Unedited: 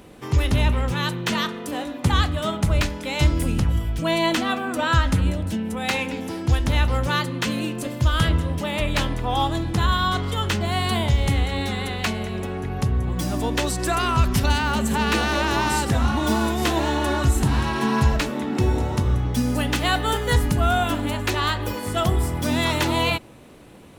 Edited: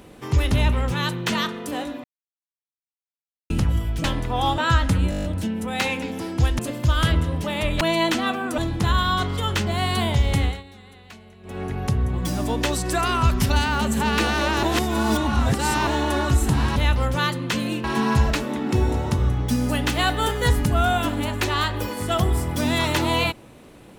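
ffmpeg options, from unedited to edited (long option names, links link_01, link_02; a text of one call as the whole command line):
ffmpeg -i in.wav -filter_complex "[0:a]asplit=21[link_01][link_02][link_03][link_04][link_05][link_06][link_07][link_08][link_09][link_10][link_11][link_12][link_13][link_14][link_15][link_16][link_17][link_18][link_19][link_20][link_21];[link_01]atrim=end=2.04,asetpts=PTS-STARTPTS,afade=type=out:start_time=2.036:duration=0.004:curve=hsin[link_22];[link_02]atrim=start=2.04:end=3.5,asetpts=PTS-STARTPTS,volume=0[link_23];[link_03]atrim=start=3.5:end=4.042,asetpts=PTS-STARTPTS,afade=type=in:duration=0.004:curve=hsin[link_24];[link_04]atrim=start=8.978:end=9.522[link_25];[link_05]atrim=start=4.808:end=5.352[link_26];[link_06]atrim=start=5.328:end=5.352[link_27];[link_07]atrim=start=5.328:end=5.352[link_28];[link_08]atrim=start=5.328:end=5.352[link_29];[link_09]atrim=start=5.328:end=5.352[link_30];[link_10]atrim=start=5.328:end=5.352[link_31];[link_11]atrim=start=5.328:end=5.352[link_32];[link_12]atrim=start=5.328:end=6.682[link_33];[link_13]atrim=start=7.758:end=8.982[link_34];[link_14]atrim=start=4.038:end=4.812[link_35];[link_15]atrim=start=9.518:end=11.57,asetpts=PTS-STARTPTS,afade=type=out:start_time=1.862:duration=0.19:silence=0.105925[link_36];[link_16]atrim=start=11.57:end=12.37,asetpts=PTS-STARTPTS,volume=-19.5dB[link_37];[link_17]atrim=start=12.37:end=15.572,asetpts=PTS-STARTPTS,afade=type=in:duration=0.19:silence=0.105925[link_38];[link_18]atrim=start=15.568:end=16.812,asetpts=PTS-STARTPTS,areverse[link_39];[link_19]atrim=start=16.808:end=17.702[link_40];[link_20]atrim=start=6.678:end=7.762[link_41];[link_21]atrim=start=17.698[link_42];[link_22][link_23][link_24]concat=n=3:v=0:a=1[link_43];[link_43][link_25]acrossfade=duration=0.004:curve1=hsin:curve2=hsin[link_44];[link_44][link_26]acrossfade=duration=0.004:curve1=hsin:curve2=hsin[link_45];[link_45][link_27]acrossfade=duration=0.004:curve1=hsin:curve2=hsin[link_46];[link_46][link_28]acrossfade=duration=0.004:curve1=hsin:curve2=hsin[link_47];[link_47][link_29]acrossfade=duration=0.004:curve1=hsin:curve2=hsin[link_48];[link_48][link_30]acrossfade=duration=0.004:curve1=hsin:curve2=hsin[link_49];[link_49][link_31]acrossfade=duration=0.004:curve1=hsin:curve2=hsin[link_50];[link_50][link_32]acrossfade=duration=0.004:curve1=hsin:curve2=hsin[link_51];[link_51][link_33]acrossfade=duration=0.004:curve1=hsin:curve2=hsin[link_52];[link_52][link_34]acrossfade=duration=0.004:curve1=hsin:curve2=hsin[link_53];[link_53][link_35]acrossfade=duration=0.004:curve1=hsin:curve2=hsin[link_54];[link_36][link_37][link_38]concat=n=3:v=0:a=1[link_55];[link_54][link_55]acrossfade=duration=0.004:curve1=hsin:curve2=hsin[link_56];[link_56][link_39]acrossfade=duration=0.004:curve1=hsin:curve2=hsin[link_57];[link_57][link_40]acrossfade=duration=0.004:curve1=hsin:curve2=hsin[link_58];[link_58][link_41]acrossfade=duration=0.004:curve1=hsin:curve2=hsin[link_59];[link_59][link_42]acrossfade=duration=0.004:curve1=hsin:curve2=hsin" out.wav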